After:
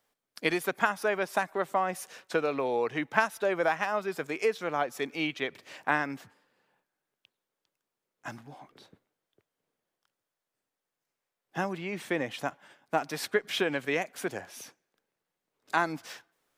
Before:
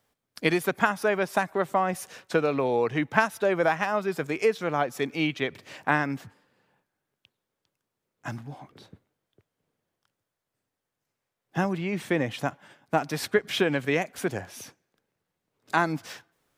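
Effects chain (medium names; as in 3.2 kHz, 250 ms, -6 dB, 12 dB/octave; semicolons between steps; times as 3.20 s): peaking EQ 79 Hz -12 dB 2.6 oct; trim -2.5 dB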